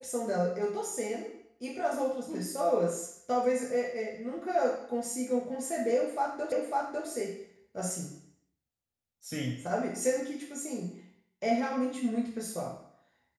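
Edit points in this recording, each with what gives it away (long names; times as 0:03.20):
0:06.52: the same again, the last 0.55 s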